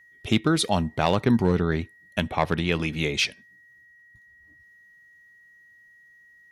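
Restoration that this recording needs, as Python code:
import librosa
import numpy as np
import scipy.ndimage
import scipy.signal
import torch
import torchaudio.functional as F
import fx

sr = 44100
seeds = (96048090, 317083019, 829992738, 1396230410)

y = fx.fix_declip(x, sr, threshold_db=-10.0)
y = fx.notch(y, sr, hz=1900.0, q=30.0)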